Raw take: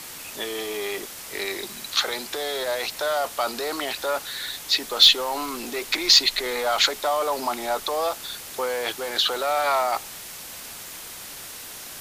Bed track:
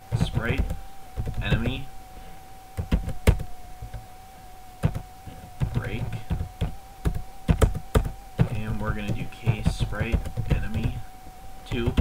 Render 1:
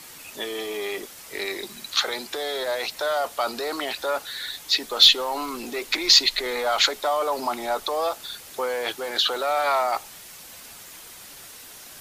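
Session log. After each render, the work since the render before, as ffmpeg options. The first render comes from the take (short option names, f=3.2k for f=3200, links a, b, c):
-af "afftdn=nr=6:nf=-39"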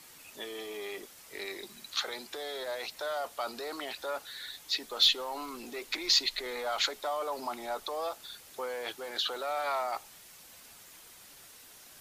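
-af "volume=-10dB"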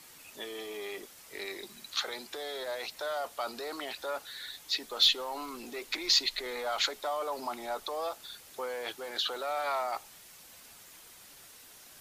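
-af anull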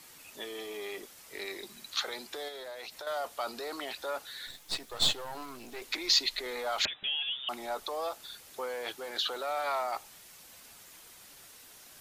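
-filter_complex "[0:a]asettb=1/sr,asplit=3[a][b][c];[a]atrim=end=2.484[d];[b]atrim=start=2.48:end=3.07,asetpts=PTS-STARTPTS,afade=t=in:d=0.004:c=qsin,afade=t=out:st=0.586:d=0.004:c=qsin,acompressor=threshold=-39dB:ratio=6:attack=3.2:release=140:knee=1:detection=peak[e];[c]atrim=start=3.066[f];[d][e]acrossfade=d=0.004:c1=hsin:c2=qsin[g];[g][f]acrossfade=d=0.004:c1=qsin:c2=hsin,asettb=1/sr,asplit=3[h][i][j];[h]atrim=end=4.474[k];[i]atrim=start=4.47:end=5.82,asetpts=PTS-STARTPTS,afade=t=in:d=0.004:c=qsin,afade=t=out:st=1.346:d=0.004:c=qsin,aeval=exprs='if(lt(val(0),0),0.251*val(0),val(0))':c=same[l];[j]atrim=start=5.816[m];[k][l]acrossfade=d=0.004:c1=hsin:c2=qsin[n];[n][m]acrossfade=d=0.004:c1=qsin:c2=hsin,asettb=1/sr,asplit=3[o][p][q];[o]atrim=end=6.854[r];[p]atrim=start=6.85:end=7.49,asetpts=PTS-STARTPTS,afade=t=in:d=0.004:c=qsin,afade=t=out:st=0.636:d=0.004:c=qsin,lowpass=f=3.3k:t=q:w=0.5098,lowpass=f=3.3k:t=q:w=0.6013,lowpass=f=3.3k:t=q:w=0.9,lowpass=f=3.3k:t=q:w=2.563,afreqshift=-3900[s];[q]atrim=start=7.486[t];[r][s]acrossfade=d=0.004:c1=hsin:c2=qsin[u];[u][t]acrossfade=d=0.004:c1=qsin:c2=hsin"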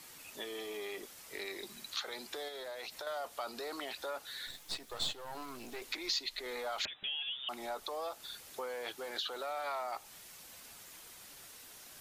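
-af "acompressor=threshold=-40dB:ratio=2"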